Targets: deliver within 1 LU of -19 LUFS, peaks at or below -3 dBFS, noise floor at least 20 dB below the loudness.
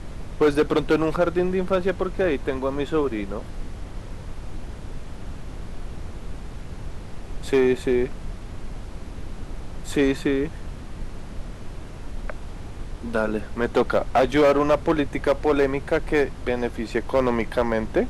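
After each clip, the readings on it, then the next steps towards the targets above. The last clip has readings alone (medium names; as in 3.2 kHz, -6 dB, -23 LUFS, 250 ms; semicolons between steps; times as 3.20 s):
clipped samples 0.8%; clipping level -12.5 dBFS; noise floor -37 dBFS; noise floor target -43 dBFS; loudness -23.0 LUFS; peak level -12.5 dBFS; loudness target -19.0 LUFS
-> clip repair -12.5 dBFS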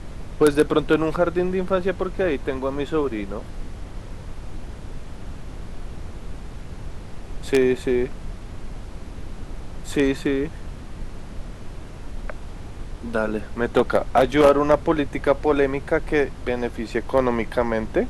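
clipped samples 0.0%; noise floor -37 dBFS; noise floor target -42 dBFS
-> noise print and reduce 6 dB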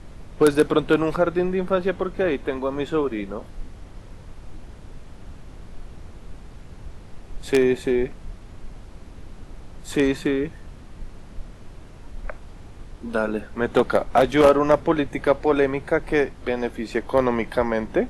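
noise floor -43 dBFS; loudness -22.0 LUFS; peak level -3.5 dBFS; loudness target -19.0 LUFS
-> trim +3 dB; peak limiter -3 dBFS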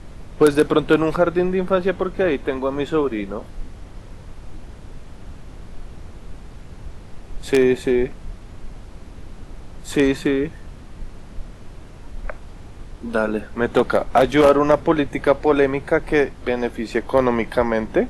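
loudness -19.5 LUFS; peak level -3.0 dBFS; noise floor -40 dBFS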